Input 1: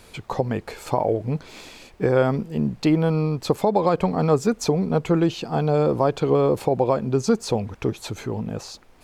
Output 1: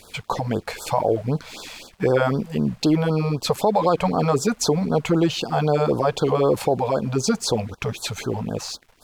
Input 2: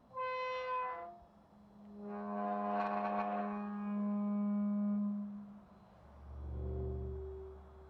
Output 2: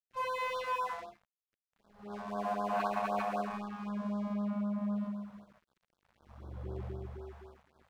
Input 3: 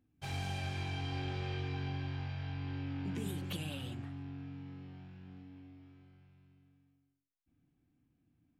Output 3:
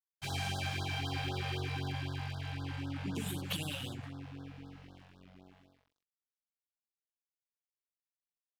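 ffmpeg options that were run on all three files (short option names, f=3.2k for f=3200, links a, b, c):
-filter_complex "[0:a]lowshelf=f=450:g=-6.5,asplit=2[a][b];[b]alimiter=limit=-20.5dB:level=0:latency=1:release=14,volume=3dB[c];[a][c]amix=inputs=2:normalize=0,aeval=exprs='sgn(val(0))*max(abs(val(0))-0.00335,0)':c=same,afftfilt=real='re*(1-between(b*sr/1024,280*pow(2400/280,0.5+0.5*sin(2*PI*3.9*pts/sr))/1.41,280*pow(2400/280,0.5+0.5*sin(2*PI*3.9*pts/sr))*1.41))':imag='im*(1-between(b*sr/1024,280*pow(2400/280,0.5+0.5*sin(2*PI*3.9*pts/sr))/1.41,280*pow(2400/280,0.5+0.5*sin(2*PI*3.9*pts/sr))*1.41))':win_size=1024:overlap=0.75"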